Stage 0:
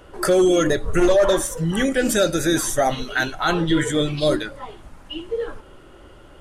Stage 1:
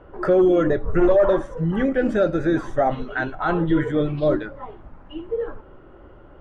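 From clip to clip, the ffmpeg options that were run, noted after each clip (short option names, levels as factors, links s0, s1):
-af "lowpass=1400"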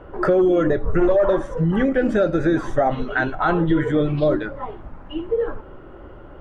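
-af "acompressor=threshold=0.0794:ratio=2.5,volume=1.88"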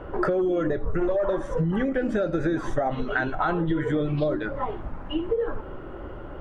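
-af "acompressor=threshold=0.0562:ratio=6,volume=1.41"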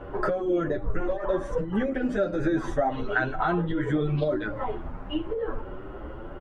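-filter_complex "[0:a]asplit=2[s0][s1];[s1]adelay=8.3,afreqshift=1.4[s2];[s0][s2]amix=inputs=2:normalize=1,volume=1.26"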